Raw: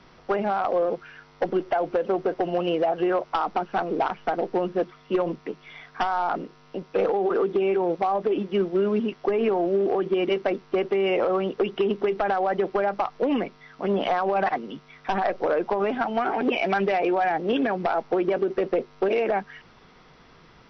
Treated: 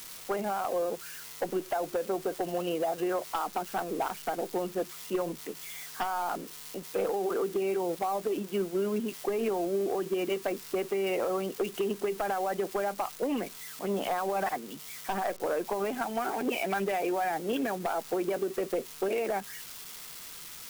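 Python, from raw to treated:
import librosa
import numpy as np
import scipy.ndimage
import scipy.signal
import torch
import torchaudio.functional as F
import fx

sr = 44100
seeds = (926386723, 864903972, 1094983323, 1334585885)

y = x + 0.5 * 10.0 ** (-25.5 / 20.0) * np.diff(np.sign(x), prepend=np.sign(x[:1]))
y = y * 10.0 ** (-7.0 / 20.0)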